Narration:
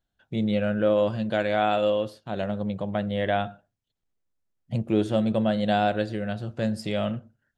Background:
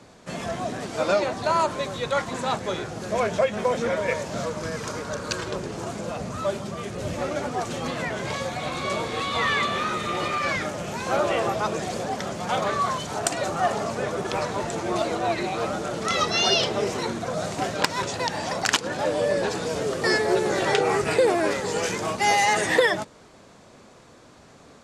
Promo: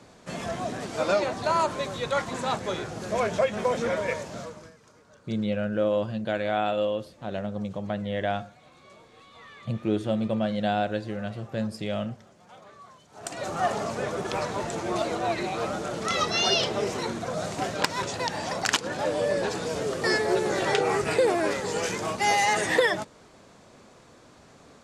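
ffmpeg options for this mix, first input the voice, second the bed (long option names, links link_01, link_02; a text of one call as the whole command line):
ffmpeg -i stem1.wav -i stem2.wav -filter_complex "[0:a]adelay=4950,volume=-3dB[link_01];[1:a]volume=20.5dB,afade=type=out:start_time=3.96:duration=0.79:silence=0.0707946,afade=type=in:start_time=13.12:duration=0.49:silence=0.0749894[link_02];[link_01][link_02]amix=inputs=2:normalize=0" out.wav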